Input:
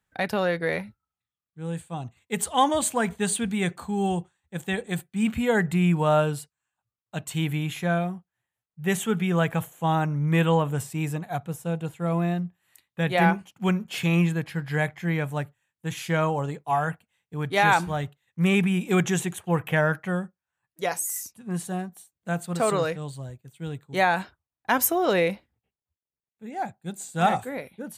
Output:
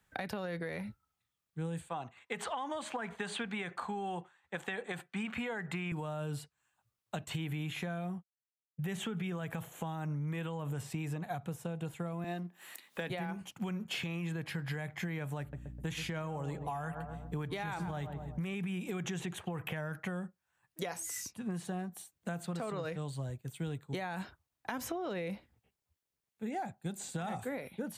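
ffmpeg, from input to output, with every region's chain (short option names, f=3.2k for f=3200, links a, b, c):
-filter_complex "[0:a]asettb=1/sr,asplit=3[a][b][c];[a]atrim=end=1.894[d];[b]atrim=start=1.89:end=5.92,asetpts=PTS-STARTPTS,afade=t=in:d=0.004:c=qsin,afade=t=out:st=4.026:d=0.004:c=qsin,acontrast=28,bandpass=f=1.3k:t=q:w=0.77[e];[c]atrim=start=5.916[f];[d][e]acrossfade=d=0.004:c1=hsin:c2=qsin[g];[g][f]acrossfade=d=0.004:c1=qsin:c2=hsin,asettb=1/sr,asplit=3[h][i][j];[h]atrim=end=7.164[k];[i]atrim=start=7.16:end=8.82,asetpts=PTS-STARTPTS,afade=t=in:d=0.004:c=qsin,afade=t=out:st=1.656:d=0.004:c=qsin,agate=range=-33dB:threshold=-42dB:ratio=3:release=100:detection=peak,acrossover=split=3600[l][m];[m]acompressor=threshold=-44dB:ratio=4:attack=1:release=60[n];[l][n]amix=inputs=2:normalize=0[o];[j]atrim=start=8.816[p];[k][o]acrossfade=d=0.004:c1=hsin:c2=qsin[q];[q][p]acrossfade=d=0.004:c1=qsin:c2=hsin,asettb=1/sr,asplit=3[r][s][t];[r]atrim=end=12.244[u];[s]atrim=start=12.24:end=13.1,asetpts=PTS-STARTPTS,afade=t=in:d=0.004:c=qsin,afade=t=out:st=0.856:d=0.004:c=qsin,aeval=exprs='if(lt(val(0),0),0.708*val(0),val(0))':c=same,highpass=f=220:w=0.5412,highpass=f=220:w=1.3066,acompressor=mode=upward:threshold=-44dB:ratio=2.5:attack=3.2:release=140:knee=2.83:detection=peak[v];[t]atrim=start=13.096[w];[u][v]acrossfade=d=0.004:c1=hsin:c2=qsin[x];[x][w]acrossfade=d=0.004:c1=qsin:c2=hsin,asettb=1/sr,asplit=3[y][z][aa];[y]atrim=end=15.404[ab];[z]atrim=start=15.4:end=18.54,asetpts=PTS-STARTPTS,afade=t=in:d=0.004:c=qsin,afade=t=out:st=3.136:d=0.004:c=qsin,asplit=2[ac][ad];[ad]adelay=127,lowpass=f=910:p=1,volume=-13dB,asplit=2[ae][af];[af]adelay=127,lowpass=f=910:p=1,volume=0.48,asplit=2[ag][ah];[ah]adelay=127,lowpass=f=910:p=1,volume=0.48,asplit=2[ai][aj];[aj]adelay=127,lowpass=f=910:p=1,volume=0.48,asplit=2[ak][al];[al]adelay=127,lowpass=f=910:p=1,volume=0.48[am];[ac][ae][ag][ai][ak][am]amix=inputs=6:normalize=0,atrim=end_sample=138474,aeval=exprs='val(0)+0.00282*(sin(2*PI*60*n/s)+sin(2*PI*2*60*n/s)/2+sin(2*PI*3*60*n/s)/3+sin(2*PI*4*60*n/s)/4+sin(2*PI*5*60*n/s)/5)':c=same[an];[aa]atrim=start=18.536[ao];[ab][an]acrossfade=d=0.004:c1=hsin:c2=qsin[ap];[ap][ao]acrossfade=d=0.004:c1=qsin:c2=hsin,acrossover=split=260|5300[aq][ar][as];[aq]acompressor=threshold=-27dB:ratio=4[at];[ar]acompressor=threshold=-27dB:ratio=4[au];[as]acompressor=threshold=-51dB:ratio=4[av];[at][au][av]amix=inputs=3:normalize=0,alimiter=level_in=0.5dB:limit=-24dB:level=0:latency=1:release=79,volume=-0.5dB,acompressor=threshold=-41dB:ratio=6,volume=5.5dB"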